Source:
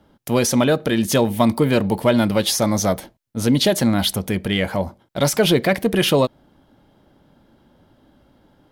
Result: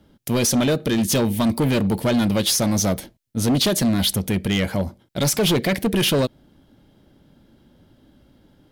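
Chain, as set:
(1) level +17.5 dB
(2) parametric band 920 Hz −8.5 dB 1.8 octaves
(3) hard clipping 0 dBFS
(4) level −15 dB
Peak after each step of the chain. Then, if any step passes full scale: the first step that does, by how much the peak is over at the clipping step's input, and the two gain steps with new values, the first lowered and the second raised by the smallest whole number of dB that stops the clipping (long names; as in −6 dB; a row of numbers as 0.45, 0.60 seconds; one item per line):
+13.0, +10.0, 0.0, −15.0 dBFS
step 1, 10.0 dB
step 1 +7.5 dB, step 4 −5 dB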